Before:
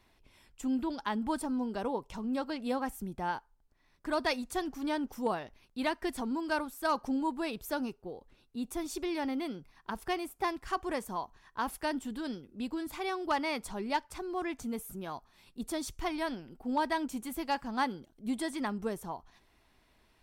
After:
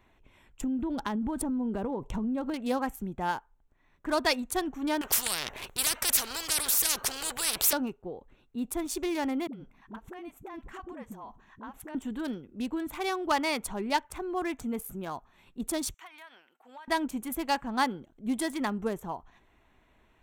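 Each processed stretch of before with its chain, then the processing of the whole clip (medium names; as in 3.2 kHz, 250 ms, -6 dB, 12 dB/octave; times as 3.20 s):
0.61–2.54 s: bass shelf 480 Hz +11.5 dB + compression 12:1, threshold -31 dBFS
5.01–7.73 s: resonant low shelf 350 Hz -6.5 dB, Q 1.5 + spectrum-flattening compressor 10:1
9.47–11.95 s: peaking EQ 220 Hz +10 dB 0.68 oct + compression 10:1, threshold -42 dBFS + phase dispersion highs, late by 61 ms, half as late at 380 Hz
15.94–16.88 s: high-pass 1.3 kHz + compression, threshold -47 dBFS
whole clip: local Wiener filter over 9 samples; treble shelf 4.7 kHz +10 dB; trim +3.5 dB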